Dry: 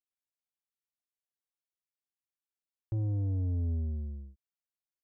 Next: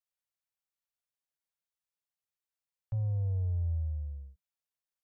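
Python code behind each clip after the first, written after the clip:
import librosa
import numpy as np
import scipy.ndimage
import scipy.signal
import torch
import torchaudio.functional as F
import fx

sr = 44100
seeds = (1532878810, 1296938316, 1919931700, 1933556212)

y = scipy.signal.sosfilt(scipy.signal.cheby1(4, 1.0, [180.0, 470.0], 'bandstop', fs=sr, output='sos'), x)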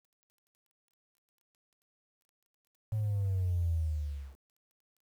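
y = fx.rider(x, sr, range_db=3, speed_s=2.0)
y = fx.dmg_crackle(y, sr, seeds[0], per_s=19.0, level_db=-60.0)
y = fx.quant_dither(y, sr, seeds[1], bits=10, dither='none')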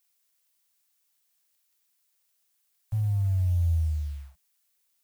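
y = scipy.signal.sosfilt(scipy.signal.ellip(3, 1.0, 40, [170.0, 640.0], 'bandstop', fs=sr, output='sos'), x)
y = fx.dmg_noise_colour(y, sr, seeds[2], colour='blue', level_db=-70.0)
y = fx.upward_expand(y, sr, threshold_db=-52.0, expansion=1.5)
y = y * librosa.db_to_amplitude(8.0)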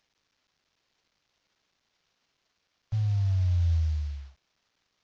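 y = fx.cvsd(x, sr, bps=32000)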